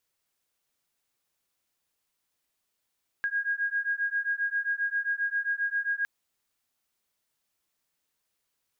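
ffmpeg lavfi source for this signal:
-f lavfi -i "aevalsrc='0.0335*(sin(2*PI*1630*t)+sin(2*PI*1637.5*t))':d=2.81:s=44100"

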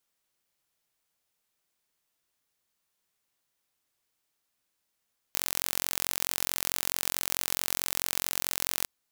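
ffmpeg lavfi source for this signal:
-f lavfi -i "aevalsrc='0.794*eq(mod(n,989),0)':d=3.51:s=44100"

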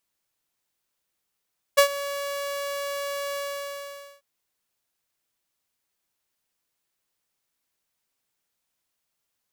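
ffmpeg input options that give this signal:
-f lavfi -i "aevalsrc='0.355*(2*mod(565*t,1)-1)':d=2.443:s=44100,afade=t=in:d=0.016,afade=t=out:st=0.016:d=0.09:silence=0.141,afade=t=out:st=1.59:d=0.853"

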